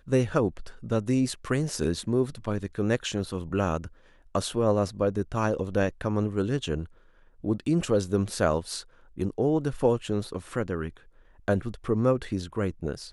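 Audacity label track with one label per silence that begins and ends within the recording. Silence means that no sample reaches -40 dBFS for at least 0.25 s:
3.880000	4.350000	silence
6.860000	7.440000	silence
8.820000	9.180000	silence
10.970000	11.480000	silence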